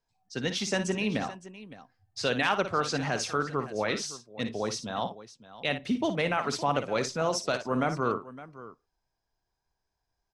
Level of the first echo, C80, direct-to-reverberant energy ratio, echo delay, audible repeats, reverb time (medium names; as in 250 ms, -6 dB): -10.0 dB, no reverb, no reverb, 56 ms, 2, no reverb